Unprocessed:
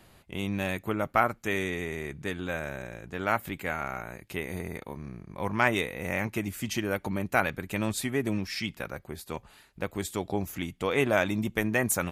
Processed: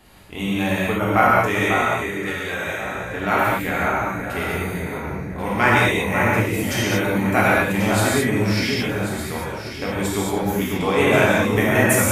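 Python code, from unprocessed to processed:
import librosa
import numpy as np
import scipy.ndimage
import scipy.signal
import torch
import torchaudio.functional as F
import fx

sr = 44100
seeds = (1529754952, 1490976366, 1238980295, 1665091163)

y = fx.low_shelf(x, sr, hz=470.0, db=-10.5, at=(1.57, 2.95))
y = fx.echo_alternate(y, sr, ms=545, hz=1700.0, feedback_pct=52, wet_db=-5.0)
y = fx.rev_gated(y, sr, seeds[0], gate_ms=250, shape='flat', drr_db=-7.0)
y = y * librosa.db_to_amplitude(2.5)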